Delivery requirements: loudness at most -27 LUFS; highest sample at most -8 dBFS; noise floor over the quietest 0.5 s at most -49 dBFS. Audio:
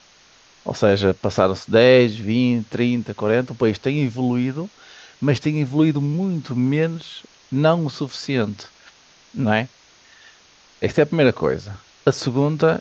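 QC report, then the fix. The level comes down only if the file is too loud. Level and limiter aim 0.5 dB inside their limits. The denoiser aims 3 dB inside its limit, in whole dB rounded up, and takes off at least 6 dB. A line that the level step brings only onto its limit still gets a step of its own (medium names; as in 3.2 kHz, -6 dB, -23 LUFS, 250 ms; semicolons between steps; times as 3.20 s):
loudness -20.0 LUFS: fail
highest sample -2.0 dBFS: fail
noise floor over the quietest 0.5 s -52 dBFS: pass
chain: trim -7.5 dB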